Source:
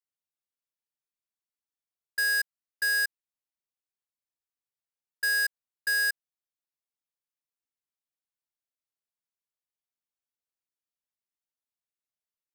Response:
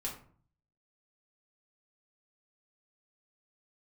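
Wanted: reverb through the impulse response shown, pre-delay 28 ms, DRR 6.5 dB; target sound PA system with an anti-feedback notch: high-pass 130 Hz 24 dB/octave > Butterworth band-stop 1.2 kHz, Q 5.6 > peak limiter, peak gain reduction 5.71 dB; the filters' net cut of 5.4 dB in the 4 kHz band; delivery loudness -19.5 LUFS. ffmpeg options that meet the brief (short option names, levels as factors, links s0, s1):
-filter_complex "[0:a]equalizer=f=4000:t=o:g=-7.5,asplit=2[s0][s1];[1:a]atrim=start_sample=2205,adelay=28[s2];[s1][s2]afir=irnorm=-1:irlink=0,volume=0.422[s3];[s0][s3]amix=inputs=2:normalize=0,highpass=f=130:w=0.5412,highpass=f=130:w=1.3066,asuperstop=centerf=1200:order=8:qfactor=5.6,volume=5.01,alimiter=limit=0.266:level=0:latency=1"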